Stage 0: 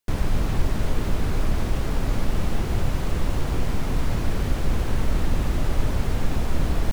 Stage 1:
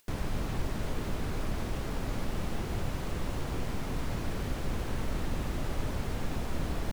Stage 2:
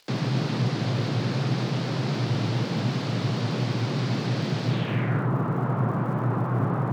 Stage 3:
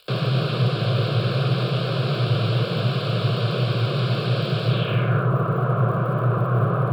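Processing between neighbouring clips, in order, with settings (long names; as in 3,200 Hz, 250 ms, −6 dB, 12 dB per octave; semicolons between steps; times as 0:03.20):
low-shelf EQ 87 Hz −6.5 dB; upward compression, threshold −44 dBFS; level −6.5 dB
frequency shifter +110 Hz; low-pass filter sweep 4,600 Hz → 1,200 Hz, 0:04.67–0:05.30; surface crackle 200 per second −51 dBFS; level +5.5 dB
phaser with its sweep stopped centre 1,300 Hz, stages 8; level +8 dB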